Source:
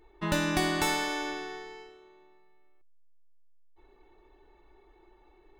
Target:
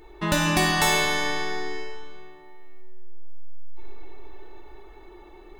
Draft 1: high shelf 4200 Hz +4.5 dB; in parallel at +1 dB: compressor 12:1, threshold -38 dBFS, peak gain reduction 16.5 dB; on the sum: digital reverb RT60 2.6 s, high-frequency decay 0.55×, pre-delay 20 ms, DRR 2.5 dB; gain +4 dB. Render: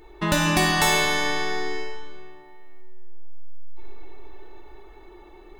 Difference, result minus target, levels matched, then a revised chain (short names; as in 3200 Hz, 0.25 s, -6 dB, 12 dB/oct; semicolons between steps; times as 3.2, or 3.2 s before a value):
compressor: peak gain reduction -10.5 dB
high shelf 4200 Hz +4.5 dB; in parallel at +1 dB: compressor 12:1, threshold -49.5 dBFS, peak gain reduction 27 dB; on the sum: digital reverb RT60 2.6 s, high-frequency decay 0.55×, pre-delay 20 ms, DRR 2.5 dB; gain +4 dB